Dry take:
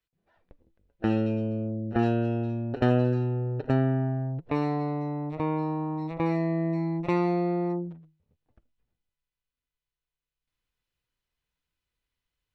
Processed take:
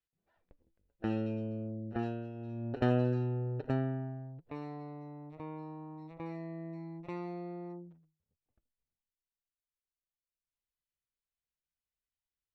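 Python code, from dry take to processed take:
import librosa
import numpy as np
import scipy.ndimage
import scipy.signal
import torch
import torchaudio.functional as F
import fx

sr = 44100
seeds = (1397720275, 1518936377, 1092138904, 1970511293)

y = fx.gain(x, sr, db=fx.line((1.88, -8.5), (2.33, -17.0), (2.67, -6.0), (3.57, -6.0), (4.34, -15.5)))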